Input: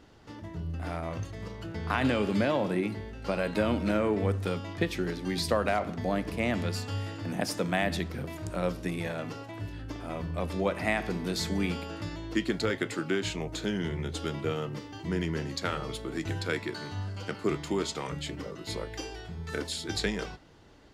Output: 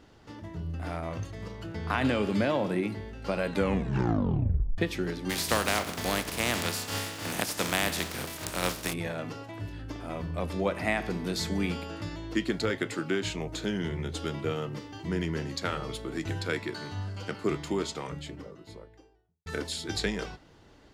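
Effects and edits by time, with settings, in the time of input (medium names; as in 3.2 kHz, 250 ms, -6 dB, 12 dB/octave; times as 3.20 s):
3.50 s: tape stop 1.28 s
5.29–8.92 s: spectral contrast reduction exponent 0.43
17.60–19.46 s: studio fade out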